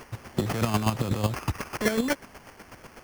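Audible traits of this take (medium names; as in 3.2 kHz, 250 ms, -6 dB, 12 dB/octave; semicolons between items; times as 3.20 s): a quantiser's noise floor 8-bit, dither triangular; chopped level 8.1 Hz, depth 60%, duty 25%; aliases and images of a low sample rate 3.8 kHz, jitter 0%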